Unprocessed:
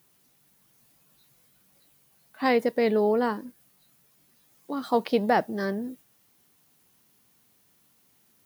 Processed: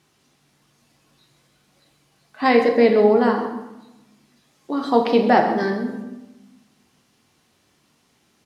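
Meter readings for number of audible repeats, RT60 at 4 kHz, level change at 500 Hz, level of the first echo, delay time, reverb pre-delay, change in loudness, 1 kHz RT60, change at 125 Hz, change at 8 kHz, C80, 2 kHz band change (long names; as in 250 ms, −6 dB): 1, 0.70 s, +8.0 dB, −14.0 dB, 132 ms, 3 ms, +7.5 dB, 1.0 s, can't be measured, can't be measured, 7.5 dB, +7.0 dB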